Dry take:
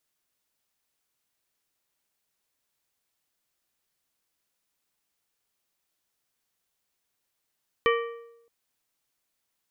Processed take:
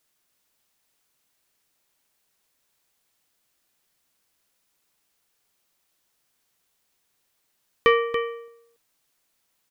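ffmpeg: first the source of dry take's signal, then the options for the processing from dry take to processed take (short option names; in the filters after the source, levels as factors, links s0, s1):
-f lavfi -i "aevalsrc='0.112*pow(10,-3*t/0.86)*sin(2*PI*466*t)+0.0794*pow(10,-3*t/0.653)*sin(2*PI*1165*t)+0.0562*pow(10,-3*t/0.567)*sin(2*PI*1864*t)+0.0398*pow(10,-3*t/0.531)*sin(2*PI*2330*t)+0.0282*pow(10,-3*t/0.49)*sin(2*PI*3029*t)':d=0.62:s=44100"
-af "aecho=1:1:283:0.335,acontrast=74,bandreject=f=50:t=h:w=6,bandreject=f=100:t=h:w=6"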